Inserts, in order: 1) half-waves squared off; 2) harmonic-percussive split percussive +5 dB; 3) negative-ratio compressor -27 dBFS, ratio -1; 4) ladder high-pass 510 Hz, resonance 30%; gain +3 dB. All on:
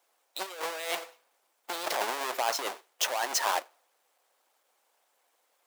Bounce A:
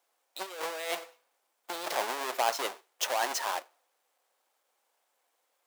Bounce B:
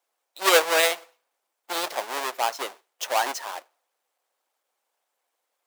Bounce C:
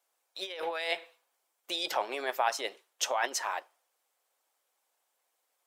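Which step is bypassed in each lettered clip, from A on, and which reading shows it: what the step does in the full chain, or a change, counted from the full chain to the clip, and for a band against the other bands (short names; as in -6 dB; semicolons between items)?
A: 2, 8 kHz band -2.5 dB; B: 3, momentary loudness spread change +6 LU; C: 1, distortion -5 dB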